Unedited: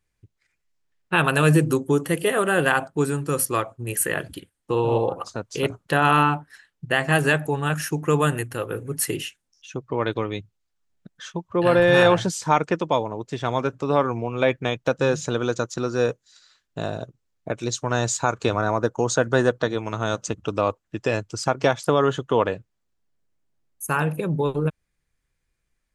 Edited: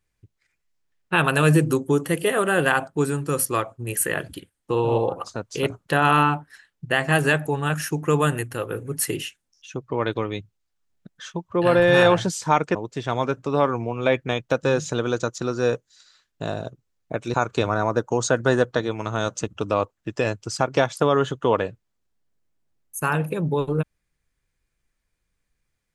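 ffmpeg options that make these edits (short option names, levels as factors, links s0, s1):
-filter_complex "[0:a]asplit=3[s0][s1][s2];[s0]atrim=end=12.752[s3];[s1]atrim=start=13.108:end=17.702[s4];[s2]atrim=start=18.208[s5];[s3][s4]acrossfade=d=0.004:c1=hsin:c2=hsin[s6];[s6][s5]acrossfade=d=0.004:c1=hsin:c2=hsin"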